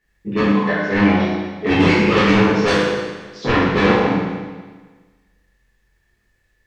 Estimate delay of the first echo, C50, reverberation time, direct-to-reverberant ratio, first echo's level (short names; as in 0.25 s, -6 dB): none, -1.0 dB, 1.4 s, -9.0 dB, none